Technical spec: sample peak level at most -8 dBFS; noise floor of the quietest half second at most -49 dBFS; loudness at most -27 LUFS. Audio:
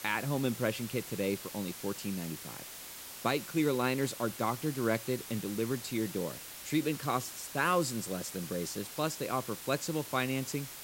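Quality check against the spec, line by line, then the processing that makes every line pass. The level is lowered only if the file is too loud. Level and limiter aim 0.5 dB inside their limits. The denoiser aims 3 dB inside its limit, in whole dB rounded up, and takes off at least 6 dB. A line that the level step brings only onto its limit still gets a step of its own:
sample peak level -15.5 dBFS: OK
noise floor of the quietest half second -46 dBFS: fail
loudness -34.0 LUFS: OK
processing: denoiser 6 dB, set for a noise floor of -46 dBFS

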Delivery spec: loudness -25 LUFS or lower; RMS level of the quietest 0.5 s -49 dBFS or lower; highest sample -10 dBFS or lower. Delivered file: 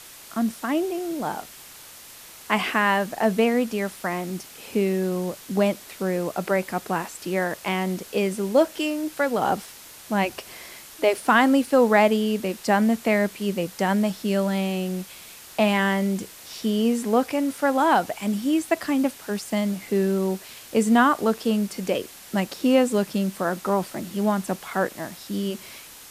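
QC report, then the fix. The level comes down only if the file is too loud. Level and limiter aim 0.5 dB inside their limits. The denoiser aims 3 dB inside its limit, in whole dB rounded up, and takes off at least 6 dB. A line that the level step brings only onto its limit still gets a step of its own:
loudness -24.0 LUFS: fail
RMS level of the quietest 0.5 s -45 dBFS: fail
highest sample -6.0 dBFS: fail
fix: denoiser 6 dB, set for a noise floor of -45 dBFS; gain -1.5 dB; limiter -10.5 dBFS

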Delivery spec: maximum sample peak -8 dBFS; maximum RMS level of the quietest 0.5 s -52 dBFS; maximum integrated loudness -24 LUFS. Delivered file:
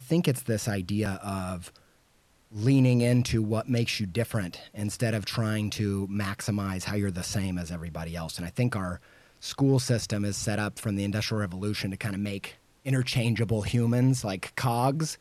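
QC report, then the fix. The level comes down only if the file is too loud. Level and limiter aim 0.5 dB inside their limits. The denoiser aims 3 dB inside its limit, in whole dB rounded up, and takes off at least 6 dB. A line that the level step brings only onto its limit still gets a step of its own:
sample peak -13.0 dBFS: OK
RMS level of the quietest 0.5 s -64 dBFS: OK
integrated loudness -28.5 LUFS: OK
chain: none

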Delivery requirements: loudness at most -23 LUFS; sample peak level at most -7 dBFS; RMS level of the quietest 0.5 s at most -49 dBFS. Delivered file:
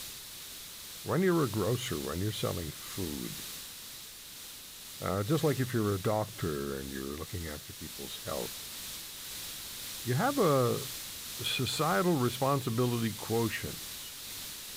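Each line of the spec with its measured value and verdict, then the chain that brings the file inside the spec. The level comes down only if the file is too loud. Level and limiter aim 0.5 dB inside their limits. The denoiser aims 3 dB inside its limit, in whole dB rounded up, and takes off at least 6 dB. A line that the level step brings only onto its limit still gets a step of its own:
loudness -33.0 LUFS: OK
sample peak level -16.0 dBFS: OK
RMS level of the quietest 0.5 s -47 dBFS: fail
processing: denoiser 6 dB, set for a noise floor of -47 dBFS

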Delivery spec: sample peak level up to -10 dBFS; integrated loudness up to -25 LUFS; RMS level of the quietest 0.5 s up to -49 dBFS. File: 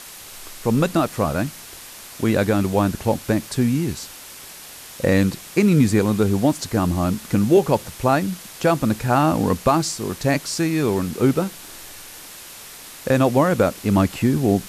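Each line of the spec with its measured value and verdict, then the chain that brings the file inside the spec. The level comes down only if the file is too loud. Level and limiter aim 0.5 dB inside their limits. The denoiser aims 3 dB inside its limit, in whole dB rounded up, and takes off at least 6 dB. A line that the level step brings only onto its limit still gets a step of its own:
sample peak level -4.0 dBFS: fail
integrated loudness -20.0 LUFS: fail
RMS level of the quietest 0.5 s -40 dBFS: fail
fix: denoiser 7 dB, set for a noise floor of -40 dBFS; gain -5.5 dB; limiter -10.5 dBFS

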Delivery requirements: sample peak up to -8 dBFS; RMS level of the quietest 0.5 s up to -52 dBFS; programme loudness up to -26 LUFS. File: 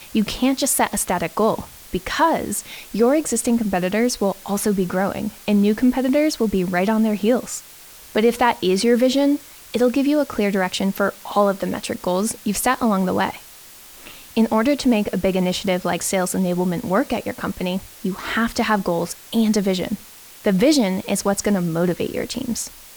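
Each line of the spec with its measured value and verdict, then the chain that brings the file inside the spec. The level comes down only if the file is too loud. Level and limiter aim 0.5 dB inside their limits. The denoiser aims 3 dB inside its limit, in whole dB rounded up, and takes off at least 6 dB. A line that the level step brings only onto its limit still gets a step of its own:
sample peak -5.5 dBFS: fail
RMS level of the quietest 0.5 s -43 dBFS: fail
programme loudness -20.5 LUFS: fail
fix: denoiser 6 dB, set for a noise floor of -43 dBFS; gain -6 dB

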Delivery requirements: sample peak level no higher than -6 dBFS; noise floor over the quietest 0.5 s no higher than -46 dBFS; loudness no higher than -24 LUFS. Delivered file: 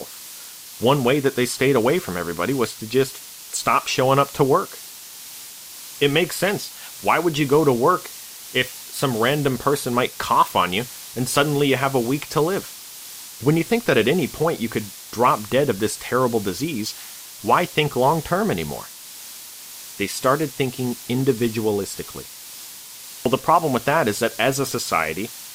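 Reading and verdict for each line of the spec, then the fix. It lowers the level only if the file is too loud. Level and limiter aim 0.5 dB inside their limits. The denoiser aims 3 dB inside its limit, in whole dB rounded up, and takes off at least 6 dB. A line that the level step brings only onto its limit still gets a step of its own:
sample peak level -4.0 dBFS: fail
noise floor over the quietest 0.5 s -39 dBFS: fail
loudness -21.0 LUFS: fail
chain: denoiser 7 dB, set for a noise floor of -39 dBFS; gain -3.5 dB

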